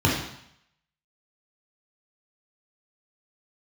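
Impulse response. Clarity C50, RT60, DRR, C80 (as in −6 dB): 2.5 dB, 0.70 s, −3.5 dB, 6.5 dB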